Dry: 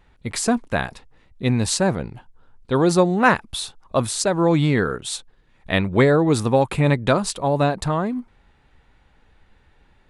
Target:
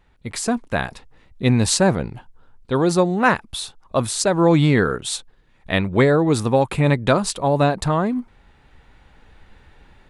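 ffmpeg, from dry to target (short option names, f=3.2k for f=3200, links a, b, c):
-af "dynaudnorm=f=560:g=3:m=10dB,volume=-2.5dB"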